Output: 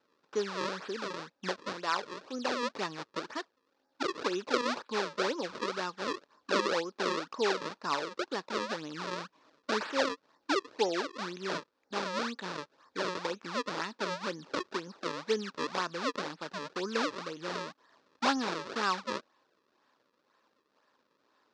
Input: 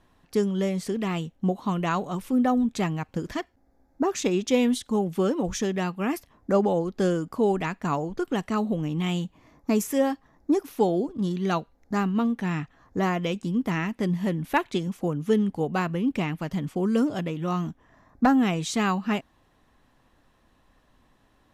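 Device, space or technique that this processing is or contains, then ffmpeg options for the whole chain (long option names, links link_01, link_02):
circuit-bent sampling toy: -filter_complex "[0:a]asettb=1/sr,asplit=3[link_01][link_02][link_03];[link_01]atrim=end=1.724[link_04];[link_02]atrim=start=1.72:end=2.63,asetpts=PTS-STARTPTS,afade=type=in:duration=0.004:curve=qsin,afade=type=out:start_time=0.906:duration=0.004:curve=qsin,highpass=frequency=290:poles=1[link_05];[link_03]atrim=start=2.626[link_06];[link_04][link_05]acrossfade=duration=0.004:curve1=hsin:curve2=qsin[link_07];[link_07][link_06]acrossfade=duration=0.004:curve1=qsin:curve2=hsin,acrusher=samples=34:mix=1:aa=0.000001:lfo=1:lforange=54.4:lforate=2,highpass=560,equalizer=frequency=720:width_type=q:width=4:gain=-10,equalizer=frequency=2100:width_type=q:width=4:gain=-7,equalizer=frequency=3000:width_type=q:width=4:gain=-6,lowpass=frequency=5300:width=0.5412,lowpass=frequency=5300:width=1.3066"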